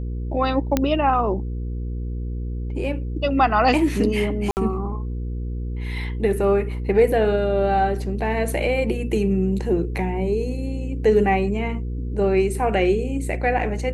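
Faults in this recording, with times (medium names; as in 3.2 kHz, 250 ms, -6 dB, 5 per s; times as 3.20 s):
hum 60 Hz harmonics 8 -27 dBFS
0.77 s: pop -5 dBFS
4.51–4.57 s: dropout 59 ms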